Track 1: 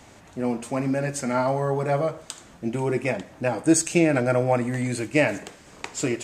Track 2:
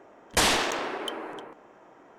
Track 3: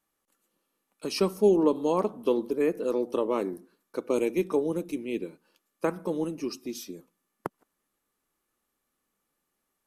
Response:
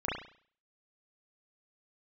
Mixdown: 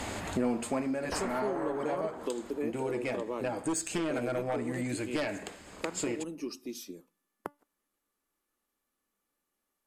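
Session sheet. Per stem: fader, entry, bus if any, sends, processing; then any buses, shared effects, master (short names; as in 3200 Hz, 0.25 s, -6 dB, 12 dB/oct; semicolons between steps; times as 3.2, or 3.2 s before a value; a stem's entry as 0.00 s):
+1.0 dB, 0.00 s, no send, notch 5800 Hz, Q 6; sine folder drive 8 dB, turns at -5 dBFS; auto duck -14 dB, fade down 0.40 s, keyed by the third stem
+2.0 dB, 0.75 s, no send, LPF 1700 Hz 24 dB/oct; limiter -25.5 dBFS, peak gain reduction 9 dB
0.0 dB, 0.00 s, no send, resonator 290 Hz, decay 0.22 s, harmonics all, mix 40%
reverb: off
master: bell 140 Hz -12.5 dB 0.22 oct; compressor 3:1, threshold -32 dBFS, peak gain reduction 16.5 dB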